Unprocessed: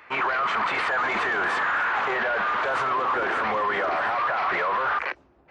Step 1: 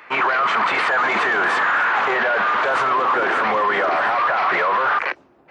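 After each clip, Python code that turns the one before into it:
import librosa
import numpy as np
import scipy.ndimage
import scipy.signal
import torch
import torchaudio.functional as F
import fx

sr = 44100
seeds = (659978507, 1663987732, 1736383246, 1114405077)

y = scipy.signal.sosfilt(scipy.signal.butter(2, 140.0, 'highpass', fs=sr, output='sos'), x)
y = y * 10.0 ** (6.0 / 20.0)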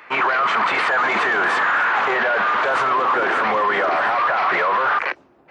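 y = x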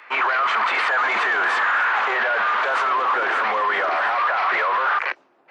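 y = fx.weighting(x, sr, curve='A')
y = y * 10.0 ** (-2.0 / 20.0)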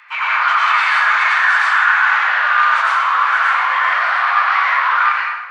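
y = scipy.signal.sosfilt(scipy.signal.butter(4, 970.0, 'highpass', fs=sr, output='sos'), x)
y = fx.rev_plate(y, sr, seeds[0], rt60_s=1.2, hf_ratio=0.7, predelay_ms=80, drr_db=-6.0)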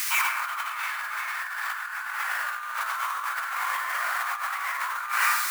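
y = x + 0.5 * 10.0 ** (-16.0 / 20.0) * np.diff(np.sign(x), prepend=np.sign(x[:1]))
y = fx.over_compress(y, sr, threshold_db=-19.0, ratio=-0.5)
y = y * 10.0 ** (-8.5 / 20.0)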